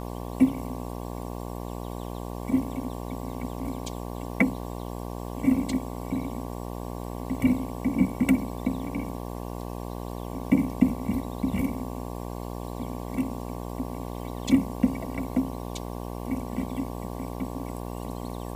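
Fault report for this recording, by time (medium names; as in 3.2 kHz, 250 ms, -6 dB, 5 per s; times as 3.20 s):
buzz 60 Hz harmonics 19 -35 dBFS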